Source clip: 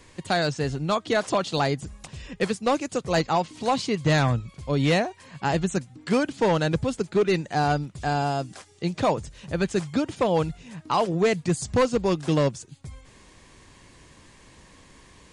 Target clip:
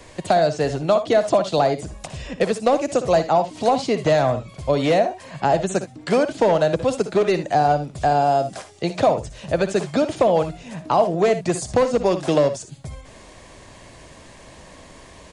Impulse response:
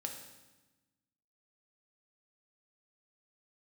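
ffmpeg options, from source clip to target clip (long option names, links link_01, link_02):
-filter_complex "[0:a]equalizer=frequency=640:width=2.6:gain=11,acrossover=split=280|900[link_01][link_02][link_03];[link_01]acompressor=threshold=-35dB:ratio=4[link_04];[link_02]acompressor=threshold=-23dB:ratio=4[link_05];[link_03]acompressor=threshold=-34dB:ratio=4[link_06];[link_04][link_05][link_06]amix=inputs=3:normalize=0,aecho=1:1:60|76:0.237|0.158,volume=6dB"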